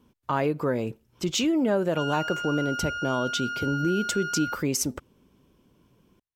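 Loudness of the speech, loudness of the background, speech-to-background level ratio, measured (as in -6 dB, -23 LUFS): -27.5 LUFS, -32.0 LUFS, 4.5 dB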